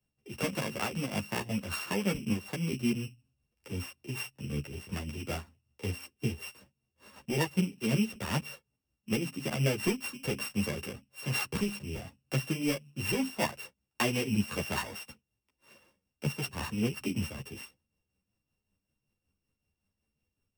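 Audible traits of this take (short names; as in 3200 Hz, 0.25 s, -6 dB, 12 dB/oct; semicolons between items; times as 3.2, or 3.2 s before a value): a buzz of ramps at a fixed pitch in blocks of 16 samples; tremolo triangle 5.3 Hz, depth 60%; a shimmering, thickened sound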